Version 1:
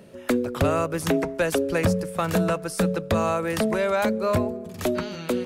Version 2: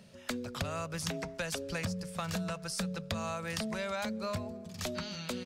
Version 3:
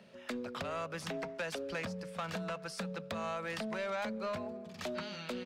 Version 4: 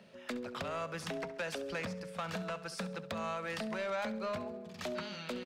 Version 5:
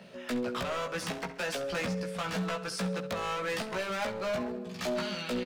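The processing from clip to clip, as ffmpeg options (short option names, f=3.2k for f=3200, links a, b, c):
-af "firequalizer=gain_entry='entry(210,0);entry(300,-13);entry(630,-4);entry(4900,8);entry(11000,-3)':delay=0.05:min_phase=1,acompressor=threshold=-26dB:ratio=6,volume=-6dB"
-filter_complex "[0:a]acrossover=split=210 3600:gain=0.178 1 0.224[a][b][c];[a][b][c]amix=inputs=3:normalize=0,asoftclip=type=tanh:threshold=-32.5dB,volume=2dB"
-af "aecho=1:1:68|136|204|272:0.178|0.0782|0.0344|0.0151"
-filter_complex "[0:a]asoftclip=type=hard:threshold=-37.5dB,asplit=2[a][b];[b]adelay=16,volume=-3dB[c];[a][c]amix=inputs=2:normalize=0,volume=6dB"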